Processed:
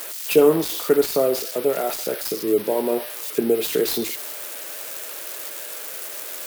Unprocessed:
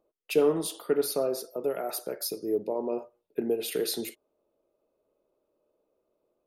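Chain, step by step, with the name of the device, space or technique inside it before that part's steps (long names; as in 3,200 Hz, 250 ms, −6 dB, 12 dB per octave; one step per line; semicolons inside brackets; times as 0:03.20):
budget class-D amplifier (gap after every zero crossing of 0.072 ms; spike at every zero crossing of −24 dBFS)
level +8.5 dB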